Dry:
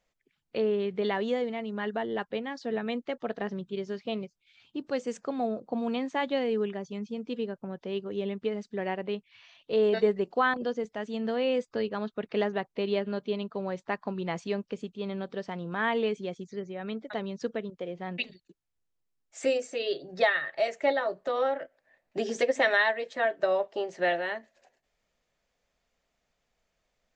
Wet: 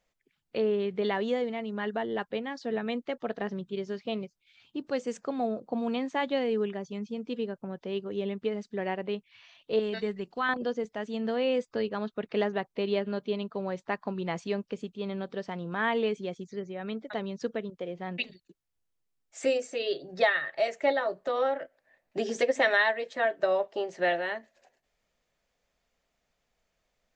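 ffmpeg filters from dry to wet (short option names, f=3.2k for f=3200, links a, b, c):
-filter_complex "[0:a]asettb=1/sr,asplit=3[a][b][c];[a]atrim=end=9.794[d];[b]atrim=start=9.79:end=10.49,asetpts=PTS-STARTPTS,afade=t=in:d=0.004:c=qsin,afade=t=out:st=0.696:d=0.004:c=qsin,equalizer=f=550:w=0.69:g=-10[e];[c]atrim=start=10.486[f];[d][e]acrossfade=d=0.004:c1=hsin:c2=qsin[g];[g][f]acrossfade=d=0.004:c1=qsin:c2=hsin"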